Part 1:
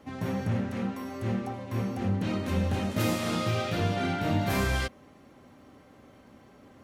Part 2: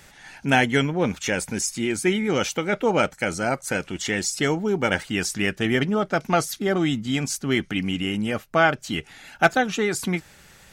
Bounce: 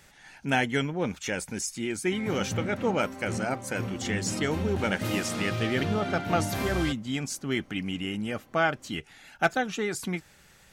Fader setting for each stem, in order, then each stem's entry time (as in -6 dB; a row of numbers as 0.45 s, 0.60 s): -3.5 dB, -6.5 dB; 2.05 s, 0.00 s